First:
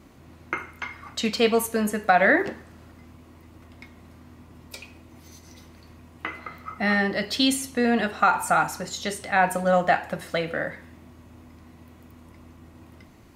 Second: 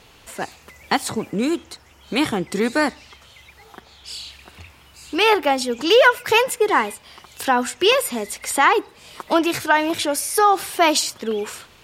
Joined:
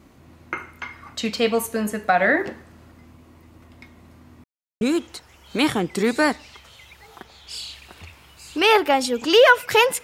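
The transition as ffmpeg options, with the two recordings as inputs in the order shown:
-filter_complex "[0:a]apad=whole_dur=10.03,atrim=end=10.03,asplit=2[a][b];[a]atrim=end=4.44,asetpts=PTS-STARTPTS,afade=t=out:st=4.436:d=0.004:c=hsin[c];[b]atrim=start=4.44:end=4.81,asetpts=PTS-STARTPTS,volume=0[d];[1:a]atrim=start=1.38:end=6.6,asetpts=PTS-STARTPTS,afade=t=in:d=0.004:c=hsin[e];[c][d][e]concat=n=3:v=0:a=1"

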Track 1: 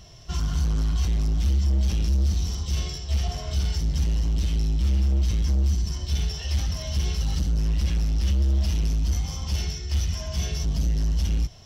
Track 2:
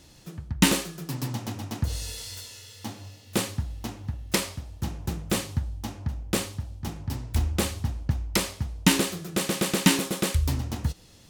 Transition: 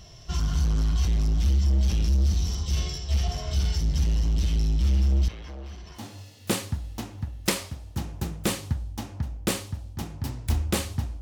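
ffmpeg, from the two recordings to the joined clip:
-filter_complex "[0:a]asettb=1/sr,asplit=3[a][b][c];[a]atrim=end=5.284[d];[b]atrim=start=5.28:end=6.06,asetpts=PTS-STARTPTS,afade=t=in:d=0.004:c=qsin,afade=t=out:st=0.776:d=0.004:c=qsin,acrossover=split=390 3100:gain=0.126 1 0.1[e][f][g];[e][f][g]amix=inputs=3:normalize=0[h];[c]atrim=start=6.056[i];[d][h]acrossfade=d=0.004:c1=hsin:c2=qsin[j];[j][i]acrossfade=d=0.004:c1=qsin:c2=hsin,apad=whole_dur=11.21,atrim=end=11.21,atrim=end=6.06,asetpts=PTS-STARTPTS[k];[1:a]atrim=start=2.78:end=8.07,asetpts=PTS-STARTPTS[l];[k][l]acrossfade=d=0.14:c1=tri:c2=tri"

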